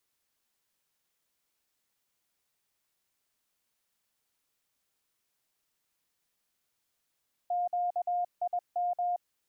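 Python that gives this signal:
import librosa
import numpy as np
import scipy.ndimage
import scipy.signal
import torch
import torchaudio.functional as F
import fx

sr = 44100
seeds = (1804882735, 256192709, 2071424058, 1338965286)

y = fx.morse(sr, text='QIM', wpm=21, hz=709.0, level_db=-27.0)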